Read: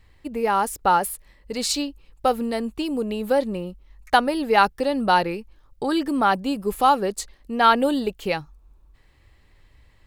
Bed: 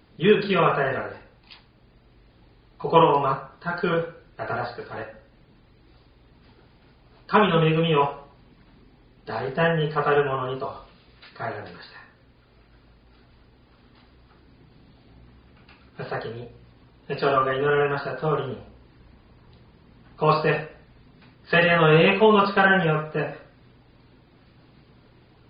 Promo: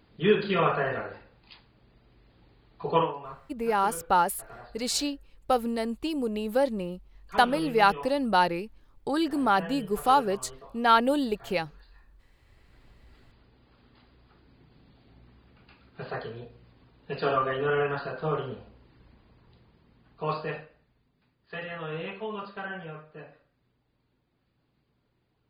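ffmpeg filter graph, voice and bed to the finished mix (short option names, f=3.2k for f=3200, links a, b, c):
-filter_complex "[0:a]adelay=3250,volume=-4dB[a];[1:a]volume=9dB,afade=t=out:st=2.89:d=0.25:silence=0.199526,afade=t=in:st=12.35:d=0.51:silence=0.211349,afade=t=out:st=19.04:d=2.07:silence=0.199526[b];[a][b]amix=inputs=2:normalize=0"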